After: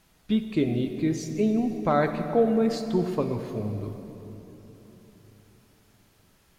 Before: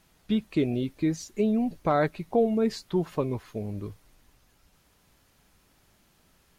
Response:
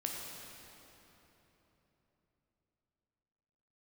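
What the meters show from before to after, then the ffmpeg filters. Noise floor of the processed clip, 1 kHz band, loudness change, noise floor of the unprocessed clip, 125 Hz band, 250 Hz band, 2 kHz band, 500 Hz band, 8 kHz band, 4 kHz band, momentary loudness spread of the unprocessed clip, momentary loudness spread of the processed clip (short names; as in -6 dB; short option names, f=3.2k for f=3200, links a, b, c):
-62 dBFS, +1.5 dB, +1.5 dB, -65 dBFS, +2.0 dB, +2.0 dB, +1.5 dB, +1.5 dB, +1.0 dB, +1.0 dB, 10 LU, 17 LU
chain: -filter_complex "[0:a]asplit=2[a][b];[1:a]atrim=start_sample=2205[c];[b][c]afir=irnorm=-1:irlink=0,volume=-1.5dB[d];[a][d]amix=inputs=2:normalize=0,volume=-4dB"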